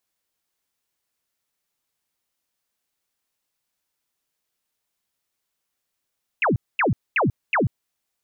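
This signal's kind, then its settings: burst of laser zaps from 2.9 kHz, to 87 Hz, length 0.14 s sine, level -16.5 dB, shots 4, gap 0.23 s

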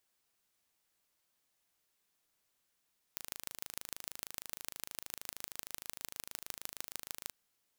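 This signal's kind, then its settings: pulse train 26.4 per s, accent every 4, -11 dBFS 4.14 s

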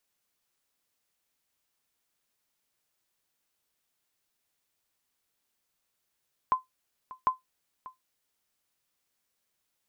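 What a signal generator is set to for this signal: sonar ping 1.03 kHz, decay 0.15 s, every 0.75 s, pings 2, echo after 0.59 s, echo -19 dB -15.5 dBFS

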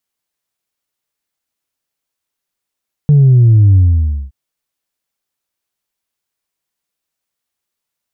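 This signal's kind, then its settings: sub drop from 150 Hz, over 1.22 s, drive 0.5 dB, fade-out 0.55 s, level -4.5 dB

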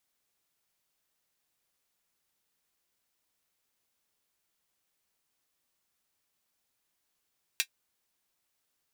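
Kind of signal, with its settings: closed hi-hat, high-pass 2.3 kHz, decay 0.08 s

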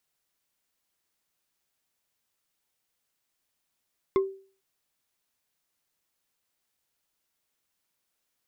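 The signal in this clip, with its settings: wood hit bar, lowest mode 387 Hz, decay 0.42 s, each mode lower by 8 dB, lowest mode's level -17 dB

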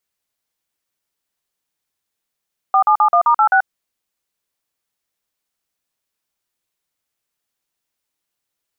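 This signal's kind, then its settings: DTMF "4771*86", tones 85 ms, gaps 45 ms, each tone -12 dBFS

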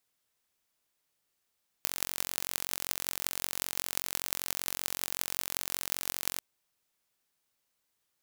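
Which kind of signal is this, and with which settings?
pulse train 45.2 per s, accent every 8, -1.5 dBFS 4.55 s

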